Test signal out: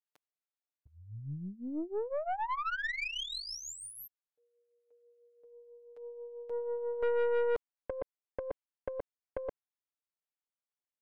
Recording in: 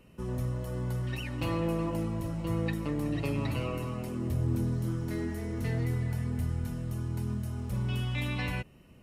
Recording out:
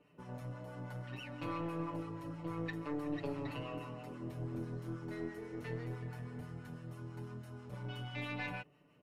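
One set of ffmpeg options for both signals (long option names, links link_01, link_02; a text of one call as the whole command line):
ffmpeg -i in.wav -filter_complex "[0:a]highpass=frequency=500:poles=1,aecho=1:1:6.8:0.79,acrossover=split=870[link_01][link_02];[link_01]aeval=exprs='val(0)*(1-0.5/2+0.5/2*cos(2*PI*6.1*n/s))':channel_layout=same[link_03];[link_02]aeval=exprs='val(0)*(1-0.5/2-0.5/2*cos(2*PI*6.1*n/s))':channel_layout=same[link_04];[link_03][link_04]amix=inputs=2:normalize=0,lowpass=frequency=1500:poles=1,aeval=exprs='(tanh(22.4*val(0)+0.45)-tanh(0.45))/22.4':channel_layout=same" out.wav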